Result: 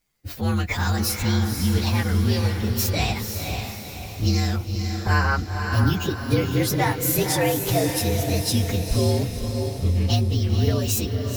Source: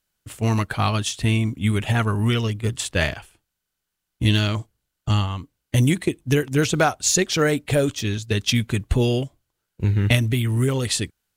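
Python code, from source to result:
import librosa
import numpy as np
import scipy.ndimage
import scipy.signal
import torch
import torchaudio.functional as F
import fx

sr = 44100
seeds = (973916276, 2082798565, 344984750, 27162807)

p1 = fx.partial_stretch(x, sr, pct=118)
p2 = fx.over_compress(p1, sr, threshold_db=-32.0, ratio=-1.0)
p3 = p1 + (p2 * 10.0 ** (-1.0 / 20.0))
p4 = fx.spec_box(p3, sr, start_s=5.02, length_s=0.35, low_hz=360.0, high_hz=3100.0, gain_db=11)
p5 = fx.echo_diffused(p4, sr, ms=512, feedback_pct=49, wet_db=-5)
y = p5 * 10.0 ** (-2.0 / 20.0)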